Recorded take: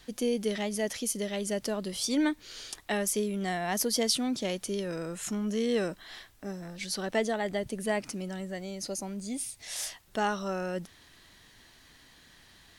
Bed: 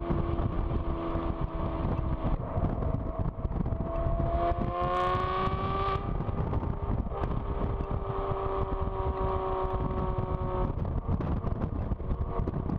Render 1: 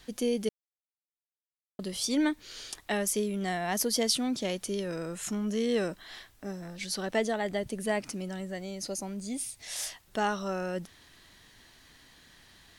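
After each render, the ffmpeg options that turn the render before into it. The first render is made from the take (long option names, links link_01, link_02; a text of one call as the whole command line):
ffmpeg -i in.wav -filter_complex "[0:a]asplit=3[link_01][link_02][link_03];[link_01]atrim=end=0.49,asetpts=PTS-STARTPTS,afade=type=out:start_time=0.486:duration=0.004:curve=hsin[link_04];[link_02]atrim=start=0.49:end=1.79,asetpts=PTS-STARTPTS,volume=0[link_05];[link_03]atrim=start=1.79,asetpts=PTS-STARTPTS,afade=type=in:duration=0.004:curve=hsin[link_06];[link_04][link_05][link_06]concat=n=3:v=0:a=1" out.wav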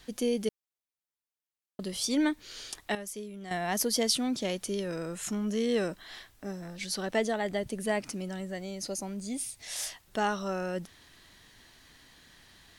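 ffmpeg -i in.wav -filter_complex "[0:a]asplit=3[link_01][link_02][link_03];[link_01]atrim=end=2.952[link_04];[link_02]atrim=start=2.948:end=3.512,asetpts=PTS-STARTPTS,volume=-10.5dB[link_05];[link_03]atrim=start=3.508[link_06];[link_04][link_05]acrossfade=duration=0.004:curve1=hsin:curve2=hsin[link_07];[link_07][link_06]acrossfade=duration=0.004:curve1=hsin:curve2=hsin" out.wav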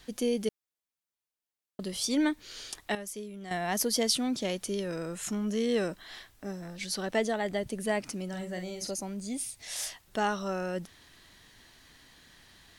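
ffmpeg -i in.wav -filter_complex "[0:a]asettb=1/sr,asplit=3[link_01][link_02][link_03];[link_01]atrim=end=8.294[link_04];[link_02]atrim=start=8.29:end=8.91,asetpts=PTS-STARTPTS,afade=type=in:duration=0.004:curve=qsin,afade=type=out:start_time=0.616:duration=0.004:curve=qsin,asplit=2[link_05][link_06];[link_06]adelay=44,volume=-6dB[link_07];[link_05][link_07]amix=inputs=2:normalize=0,atrim=end_sample=27342[link_08];[link_03]atrim=start=8.906[link_09];[link_04][link_08]acrossfade=duration=0.004:curve1=hsin:curve2=qsin[link_10];[link_10][link_09]acrossfade=duration=0.004:curve1=qsin:curve2=hsin" out.wav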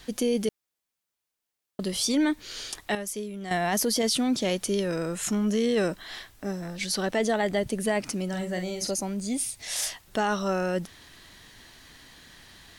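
ffmpeg -i in.wav -af "acontrast=56,alimiter=limit=-17dB:level=0:latency=1:release=14" out.wav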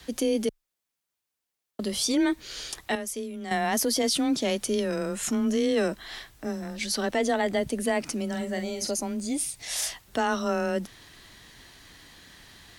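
ffmpeg -i in.wav -af "afreqshift=17" out.wav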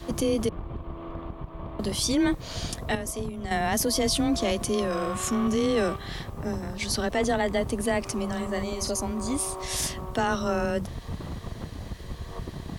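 ffmpeg -i in.wav -i bed.wav -filter_complex "[1:a]volume=-5.5dB[link_01];[0:a][link_01]amix=inputs=2:normalize=0" out.wav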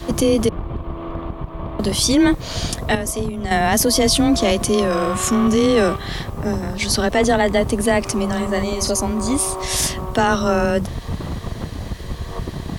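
ffmpeg -i in.wav -af "volume=9dB" out.wav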